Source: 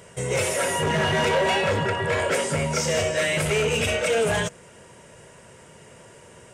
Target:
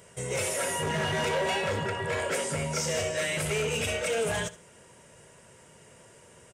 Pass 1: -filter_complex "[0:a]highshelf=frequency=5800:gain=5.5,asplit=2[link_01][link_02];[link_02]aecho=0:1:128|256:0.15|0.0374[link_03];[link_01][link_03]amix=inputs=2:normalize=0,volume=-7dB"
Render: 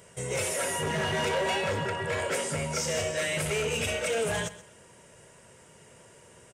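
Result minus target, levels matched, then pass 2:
echo 56 ms late
-filter_complex "[0:a]highshelf=frequency=5800:gain=5.5,asplit=2[link_01][link_02];[link_02]aecho=0:1:72|144:0.15|0.0374[link_03];[link_01][link_03]amix=inputs=2:normalize=0,volume=-7dB"

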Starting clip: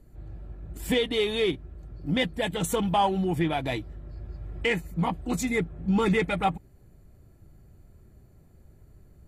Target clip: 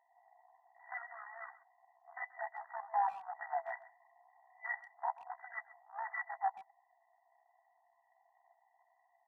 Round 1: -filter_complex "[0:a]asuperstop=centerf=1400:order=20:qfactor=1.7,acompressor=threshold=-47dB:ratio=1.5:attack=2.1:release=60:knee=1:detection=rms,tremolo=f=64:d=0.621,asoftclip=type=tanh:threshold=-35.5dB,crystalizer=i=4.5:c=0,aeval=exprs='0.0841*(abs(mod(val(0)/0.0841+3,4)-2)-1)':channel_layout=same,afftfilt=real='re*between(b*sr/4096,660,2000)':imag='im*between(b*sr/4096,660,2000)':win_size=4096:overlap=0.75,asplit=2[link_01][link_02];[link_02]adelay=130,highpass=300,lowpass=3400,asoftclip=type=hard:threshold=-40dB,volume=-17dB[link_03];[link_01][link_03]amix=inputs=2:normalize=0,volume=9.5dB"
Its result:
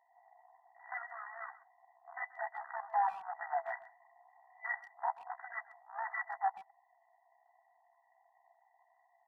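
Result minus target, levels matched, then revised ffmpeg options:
downward compressor: peak gain reduction −3 dB
-filter_complex "[0:a]asuperstop=centerf=1400:order=20:qfactor=1.7,acompressor=threshold=-56dB:ratio=1.5:attack=2.1:release=60:knee=1:detection=rms,tremolo=f=64:d=0.621,asoftclip=type=tanh:threshold=-35.5dB,crystalizer=i=4.5:c=0,aeval=exprs='0.0841*(abs(mod(val(0)/0.0841+3,4)-2)-1)':channel_layout=same,afftfilt=real='re*between(b*sr/4096,660,2000)':imag='im*between(b*sr/4096,660,2000)':win_size=4096:overlap=0.75,asplit=2[link_01][link_02];[link_02]adelay=130,highpass=300,lowpass=3400,asoftclip=type=hard:threshold=-40dB,volume=-17dB[link_03];[link_01][link_03]amix=inputs=2:normalize=0,volume=9.5dB"

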